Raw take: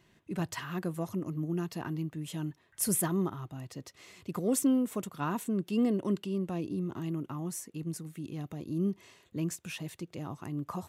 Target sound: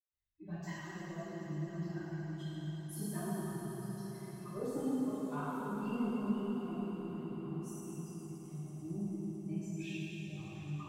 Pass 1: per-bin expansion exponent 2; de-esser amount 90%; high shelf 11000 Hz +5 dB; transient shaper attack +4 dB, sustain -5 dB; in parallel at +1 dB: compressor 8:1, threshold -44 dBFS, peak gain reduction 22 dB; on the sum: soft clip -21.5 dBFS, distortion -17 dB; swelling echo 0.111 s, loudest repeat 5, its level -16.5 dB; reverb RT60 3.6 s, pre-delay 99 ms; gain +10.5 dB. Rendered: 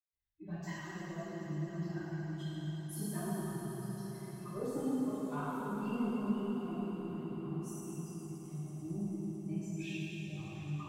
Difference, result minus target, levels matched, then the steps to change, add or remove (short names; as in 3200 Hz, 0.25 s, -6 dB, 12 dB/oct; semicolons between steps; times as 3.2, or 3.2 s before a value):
compressor: peak gain reduction -6 dB
change: compressor 8:1, threshold -51 dBFS, peak gain reduction 28.5 dB